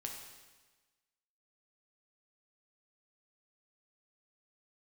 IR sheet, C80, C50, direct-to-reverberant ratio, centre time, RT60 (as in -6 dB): 5.5 dB, 4.0 dB, 0.5 dB, 47 ms, 1.3 s